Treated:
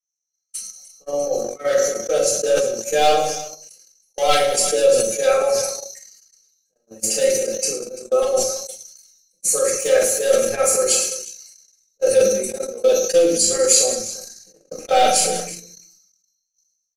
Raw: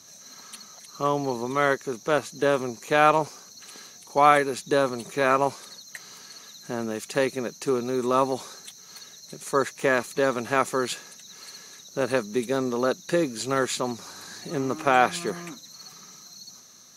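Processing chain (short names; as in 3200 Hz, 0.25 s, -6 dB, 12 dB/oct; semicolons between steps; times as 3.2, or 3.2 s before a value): formant sharpening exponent 1.5; bell 1200 Hz -11 dB 2.4 oct; fixed phaser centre 970 Hz, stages 6; comb 3.8 ms, depth 100%; hard clip -20 dBFS, distortion -21 dB; resonant high shelf 2400 Hz +13 dB, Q 1.5; on a send: tapped delay 45/108/195/345 ms -9/-11.5/-13.5/-13 dB; on the sum: shoebox room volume 210 m³, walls furnished, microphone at 6.2 m; gate -19 dBFS, range -53 dB; sustainer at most 52 dB/s; gain -3 dB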